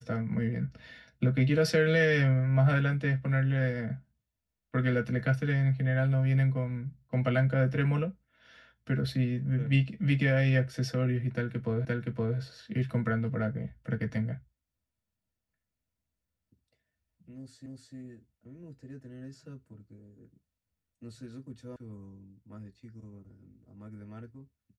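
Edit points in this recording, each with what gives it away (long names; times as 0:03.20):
0:11.85: the same again, the last 0.52 s
0:17.66: the same again, the last 0.3 s
0:21.76: cut off before it has died away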